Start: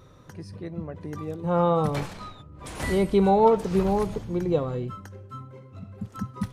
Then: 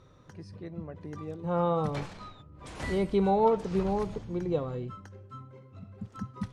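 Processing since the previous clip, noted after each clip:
low-pass filter 7,200 Hz 12 dB per octave
level −5.5 dB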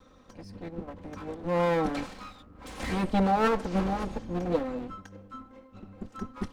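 lower of the sound and its delayed copy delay 3.8 ms
level +3 dB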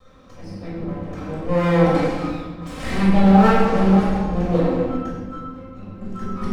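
convolution reverb RT60 1.6 s, pre-delay 15 ms, DRR −6.5 dB
level −1.5 dB

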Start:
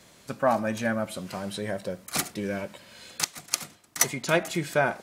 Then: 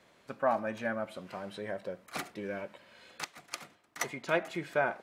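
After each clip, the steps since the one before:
bass and treble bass −8 dB, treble −14 dB
level −5 dB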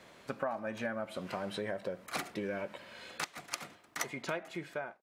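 fade-out on the ending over 1.06 s
downward compressor 6 to 1, threshold −40 dBFS, peak gain reduction 16 dB
level +6.5 dB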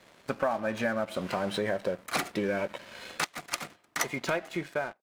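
leveller curve on the samples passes 2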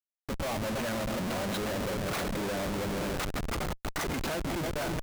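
echo whose low-pass opens from repeat to repeat 162 ms, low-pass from 200 Hz, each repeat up 2 octaves, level −6 dB
comparator with hysteresis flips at −36 dBFS

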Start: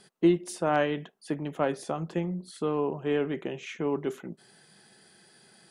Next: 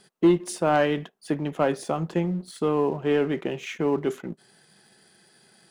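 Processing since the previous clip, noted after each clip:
leveller curve on the samples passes 1
level +1.5 dB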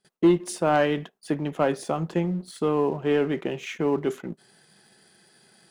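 noise gate with hold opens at −46 dBFS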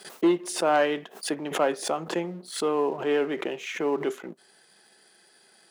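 high-pass filter 340 Hz 12 dB per octave
background raised ahead of every attack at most 130 dB per second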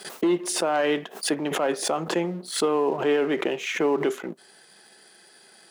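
brickwall limiter −20 dBFS, peak gain reduction 8.5 dB
level +5.5 dB

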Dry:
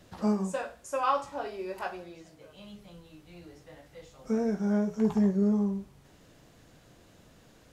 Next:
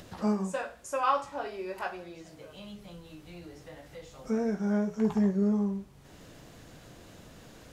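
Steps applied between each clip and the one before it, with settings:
dynamic equaliser 1,800 Hz, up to +3 dB, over −49 dBFS, Q 0.78
in parallel at −2.5 dB: upward compression, threshold −32 dBFS
on the sum: level −6 dB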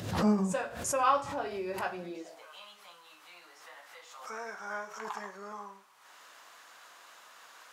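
high-pass filter sweep 100 Hz → 1,100 Hz, 0:01.90–0:02.46
background raised ahead of every attack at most 71 dB per second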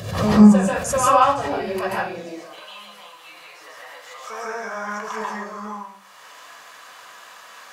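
convolution reverb RT60 0.30 s, pre-delay 133 ms, DRR −3 dB
level +5 dB

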